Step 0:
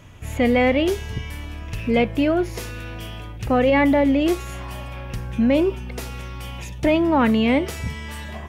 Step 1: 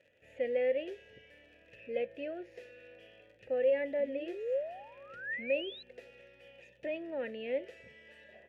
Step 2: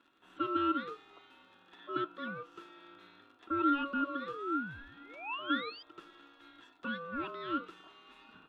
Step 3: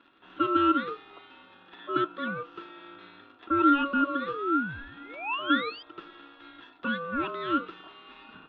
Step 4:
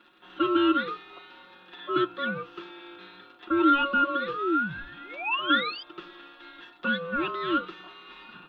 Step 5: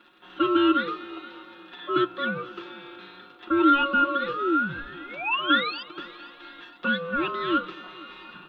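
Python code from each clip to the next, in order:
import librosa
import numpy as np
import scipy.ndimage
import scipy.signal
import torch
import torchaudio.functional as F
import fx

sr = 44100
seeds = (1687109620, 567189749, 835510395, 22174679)

y1 = fx.dmg_crackle(x, sr, seeds[0], per_s=54.0, level_db=-28.0)
y1 = fx.spec_paint(y1, sr, seeds[1], shape='rise', start_s=3.99, length_s=1.84, low_hz=220.0, high_hz=4100.0, level_db=-22.0)
y1 = fx.vowel_filter(y1, sr, vowel='e')
y1 = y1 * 10.0 ** (-7.5 / 20.0)
y2 = y1 * np.sin(2.0 * np.pi * 840.0 * np.arange(len(y1)) / sr)
y2 = y2 * 10.0 ** (2.0 / 20.0)
y3 = scipy.signal.sosfilt(scipy.signal.butter(4, 4000.0, 'lowpass', fs=sr, output='sos'), y2)
y3 = y3 * 10.0 ** (8.0 / 20.0)
y4 = fx.high_shelf(y3, sr, hz=3800.0, db=9.5)
y4 = fx.hum_notches(y4, sr, base_hz=60, count=3)
y4 = y4 + 0.59 * np.pad(y4, (int(5.6 * sr / 1000.0), 0))[:len(y4)]
y5 = fx.echo_heads(y4, sr, ms=237, heads='first and second', feedback_pct=43, wet_db=-22.5)
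y5 = y5 * 10.0 ** (2.0 / 20.0)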